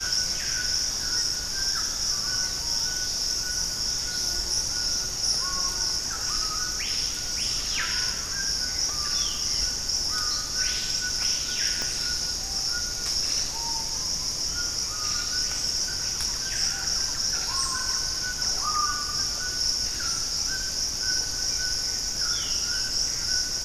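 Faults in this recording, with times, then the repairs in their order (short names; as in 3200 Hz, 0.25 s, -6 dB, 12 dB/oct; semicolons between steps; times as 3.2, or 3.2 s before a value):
11.82 pop -14 dBFS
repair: de-click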